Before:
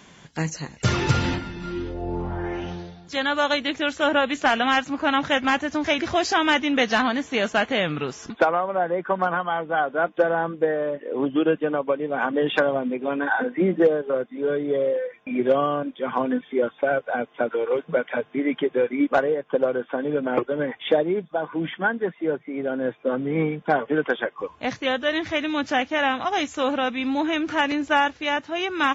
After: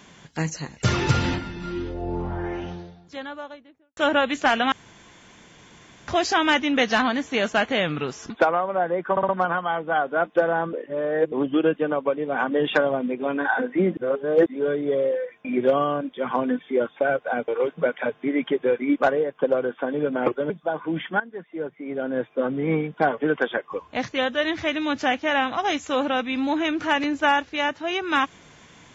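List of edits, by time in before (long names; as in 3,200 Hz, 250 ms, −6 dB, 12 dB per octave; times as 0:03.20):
0:02.24–0:03.97: fade out and dull
0:04.72–0:06.08: fill with room tone
0:09.11: stutter 0.06 s, 4 plays
0:10.55–0:11.14: reverse
0:13.79–0:14.28: reverse
0:17.30–0:17.59: remove
0:20.61–0:21.18: remove
0:21.88–0:22.88: fade in, from −15.5 dB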